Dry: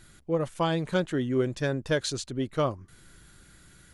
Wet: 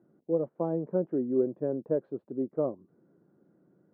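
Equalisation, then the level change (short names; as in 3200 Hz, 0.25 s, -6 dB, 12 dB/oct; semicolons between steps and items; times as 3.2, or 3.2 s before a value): HPF 170 Hz 24 dB/oct; ladder low-pass 660 Hz, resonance 20%; low shelf 380 Hz -7.5 dB; +8.0 dB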